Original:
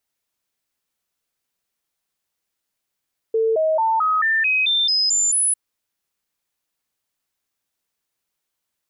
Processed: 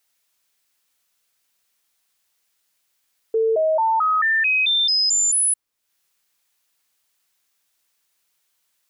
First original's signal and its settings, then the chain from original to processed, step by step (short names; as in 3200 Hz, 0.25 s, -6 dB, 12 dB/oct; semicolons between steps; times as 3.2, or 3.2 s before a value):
stepped sine 447 Hz up, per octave 2, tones 10, 0.22 s, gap 0.00 s -15.5 dBFS
notches 60/120/180/240/300/360/420 Hz; mismatched tape noise reduction encoder only